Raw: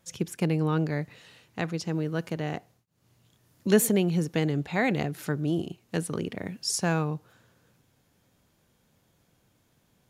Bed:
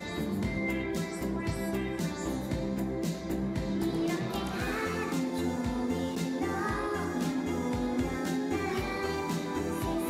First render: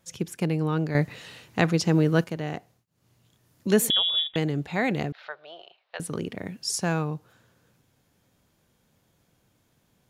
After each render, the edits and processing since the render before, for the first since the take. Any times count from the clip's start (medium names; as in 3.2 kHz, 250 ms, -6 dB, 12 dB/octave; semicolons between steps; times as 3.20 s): 0.95–2.24 s: gain +8.5 dB; 3.90–4.36 s: frequency inversion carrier 3.6 kHz; 5.12–6.00 s: elliptic band-pass 600–4000 Hz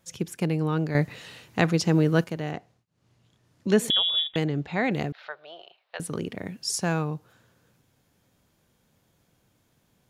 2.51–3.88 s: distance through air 56 m; 4.44–4.92 s: boxcar filter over 4 samples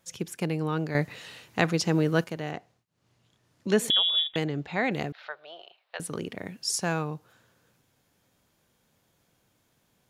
bass shelf 320 Hz -5.5 dB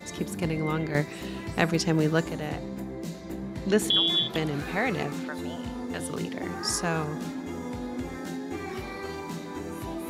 add bed -3.5 dB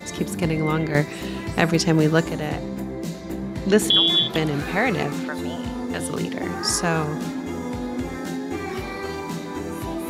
trim +6 dB; peak limiter -2 dBFS, peak gain reduction 2.5 dB